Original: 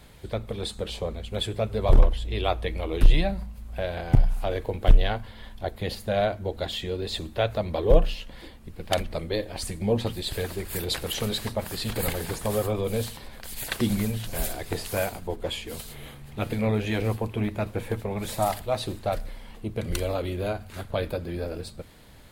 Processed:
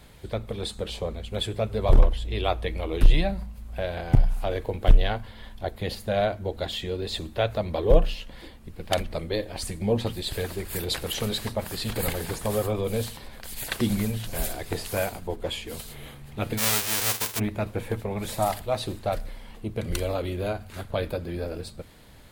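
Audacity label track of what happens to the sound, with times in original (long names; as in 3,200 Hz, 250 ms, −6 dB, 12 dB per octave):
16.570000	17.380000	spectral envelope flattened exponent 0.1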